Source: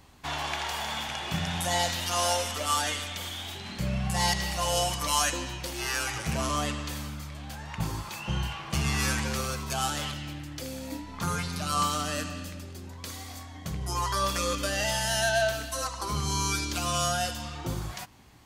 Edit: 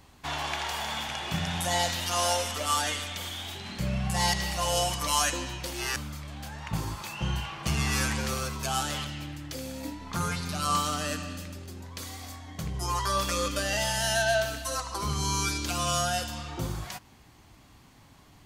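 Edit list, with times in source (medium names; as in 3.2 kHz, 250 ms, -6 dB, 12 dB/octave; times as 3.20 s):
5.96–7.03 s: delete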